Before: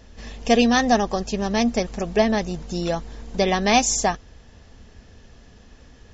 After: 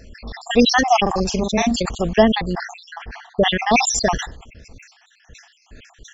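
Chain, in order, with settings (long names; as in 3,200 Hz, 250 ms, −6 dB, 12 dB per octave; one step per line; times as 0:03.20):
time-frequency cells dropped at random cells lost 66%
0:01.02–0:01.82: double-tracking delay 43 ms −5 dB
0:02.53–0:03.87: low-pass filter 3,000 Hz 12 dB per octave
level that may fall only so fast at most 83 dB per second
level +5 dB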